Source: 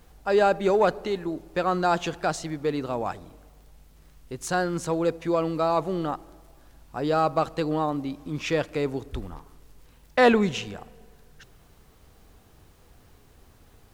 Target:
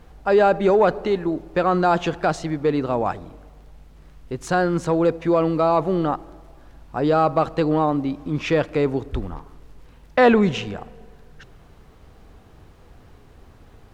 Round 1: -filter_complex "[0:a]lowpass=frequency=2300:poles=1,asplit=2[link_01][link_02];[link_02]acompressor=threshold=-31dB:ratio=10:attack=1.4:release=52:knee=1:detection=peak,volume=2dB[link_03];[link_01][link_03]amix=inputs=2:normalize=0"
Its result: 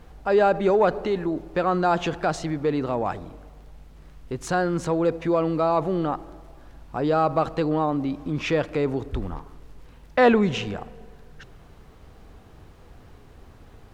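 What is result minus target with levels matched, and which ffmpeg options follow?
downward compressor: peak gain reduction +9.5 dB
-filter_complex "[0:a]lowpass=frequency=2300:poles=1,asplit=2[link_01][link_02];[link_02]acompressor=threshold=-20.5dB:ratio=10:attack=1.4:release=52:knee=1:detection=peak,volume=2dB[link_03];[link_01][link_03]amix=inputs=2:normalize=0"

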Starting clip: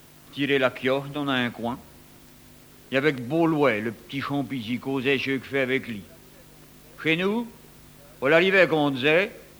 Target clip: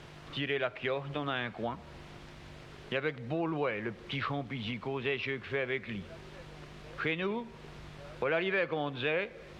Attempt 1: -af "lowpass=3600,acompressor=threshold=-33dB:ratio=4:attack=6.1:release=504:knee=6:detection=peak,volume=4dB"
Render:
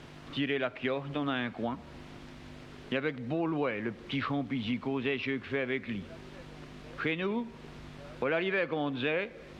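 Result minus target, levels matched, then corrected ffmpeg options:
250 Hz band +4.0 dB
-af "lowpass=3600,acompressor=threshold=-33dB:ratio=4:attack=6.1:release=504:knee=6:detection=peak,equalizer=frequency=260:width=4.1:gain=-10.5,volume=4dB"

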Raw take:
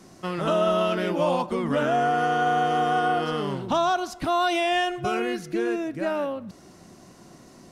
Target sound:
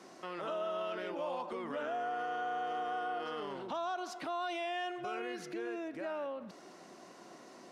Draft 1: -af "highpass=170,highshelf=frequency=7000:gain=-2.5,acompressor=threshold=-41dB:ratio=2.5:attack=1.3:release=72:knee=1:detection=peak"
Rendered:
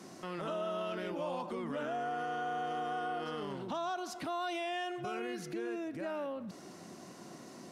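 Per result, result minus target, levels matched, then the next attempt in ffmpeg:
125 Hz band +9.0 dB; 8,000 Hz band +3.5 dB
-af "highpass=380,highshelf=frequency=7000:gain=-2.5,acompressor=threshold=-41dB:ratio=2.5:attack=1.3:release=72:knee=1:detection=peak"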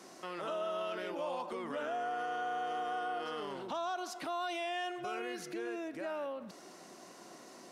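8,000 Hz band +4.5 dB
-af "highpass=380,highshelf=frequency=7000:gain=-14,acompressor=threshold=-41dB:ratio=2.5:attack=1.3:release=72:knee=1:detection=peak"

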